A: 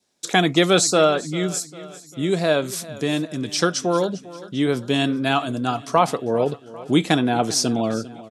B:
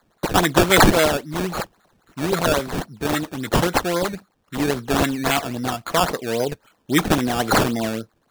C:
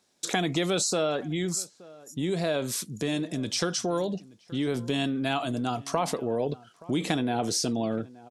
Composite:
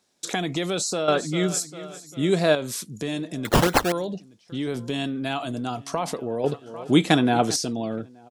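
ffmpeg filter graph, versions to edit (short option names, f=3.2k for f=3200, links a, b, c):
-filter_complex "[0:a]asplit=2[a][b];[2:a]asplit=4[c][d][e][f];[c]atrim=end=1.082[g];[a]atrim=start=1.078:end=2.552[h];[d]atrim=start=2.548:end=3.452[i];[1:a]atrim=start=3.448:end=3.922[j];[e]atrim=start=3.918:end=6.442[k];[b]atrim=start=6.438:end=7.562[l];[f]atrim=start=7.558[m];[g][h]acrossfade=d=0.004:c1=hsin:c2=hsin[n];[n][i]acrossfade=d=0.004:c1=hsin:c2=hsin[o];[o][j]acrossfade=d=0.004:c1=hsin:c2=hsin[p];[p][k]acrossfade=d=0.004:c1=hsin:c2=hsin[q];[q][l]acrossfade=d=0.004:c1=hsin:c2=hsin[r];[r][m]acrossfade=d=0.004:c1=hsin:c2=hsin"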